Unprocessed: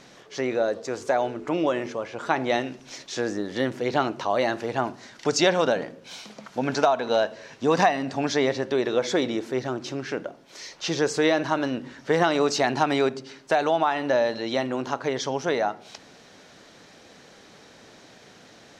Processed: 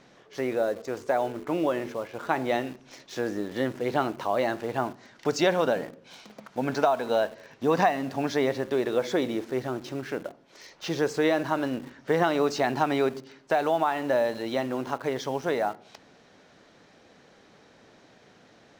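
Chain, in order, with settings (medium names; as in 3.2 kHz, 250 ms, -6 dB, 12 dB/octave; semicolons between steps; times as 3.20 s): treble shelf 3.7 kHz -9 dB; in parallel at -9.5 dB: bit crusher 6-bit; on the sum: trim -4.5 dB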